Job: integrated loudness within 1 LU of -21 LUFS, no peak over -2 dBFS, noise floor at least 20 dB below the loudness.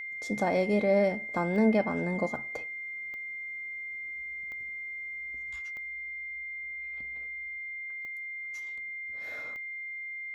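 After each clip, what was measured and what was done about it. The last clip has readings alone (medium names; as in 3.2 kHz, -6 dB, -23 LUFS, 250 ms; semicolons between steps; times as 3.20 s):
clicks found 6; steady tone 2.1 kHz; tone level -36 dBFS; loudness -32.5 LUFS; peak level -13.5 dBFS; loudness target -21.0 LUFS
-> de-click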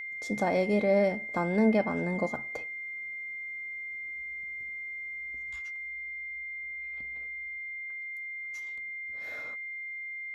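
clicks found 0; steady tone 2.1 kHz; tone level -36 dBFS
-> band-stop 2.1 kHz, Q 30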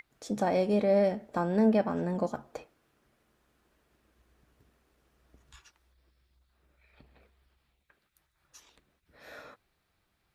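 steady tone not found; loudness -28.5 LUFS; peak level -14.5 dBFS; loudness target -21.0 LUFS
-> trim +7.5 dB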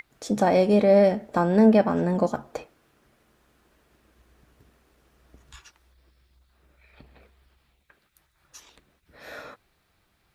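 loudness -21.0 LUFS; peak level -7.0 dBFS; noise floor -69 dBFS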